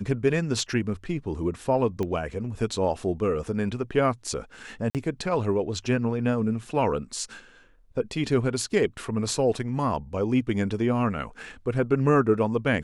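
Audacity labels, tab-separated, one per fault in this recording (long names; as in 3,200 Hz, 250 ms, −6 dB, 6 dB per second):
2.030000	2.030000	click −18 dBFS
4.900000	4.950000	drop-out 48 ms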